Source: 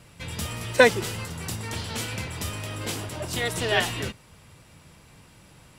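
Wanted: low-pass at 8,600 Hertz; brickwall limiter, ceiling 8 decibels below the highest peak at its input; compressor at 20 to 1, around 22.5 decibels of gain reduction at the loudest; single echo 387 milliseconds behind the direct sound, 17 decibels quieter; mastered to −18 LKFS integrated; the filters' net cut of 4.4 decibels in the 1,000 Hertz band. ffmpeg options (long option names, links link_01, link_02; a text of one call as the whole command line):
ffmpeg -i in.wav -af "lowpass=8600,equalizer=frequency=1000:width_type=o:gain=-6,acompressor=threshold=-34dB:ratio=20,alimiter=level_in=7dB:limit=-24dB:level=0:latency=1,volume=-7dB,aecho=1:1:387:0.141,volume=22dB" out.wav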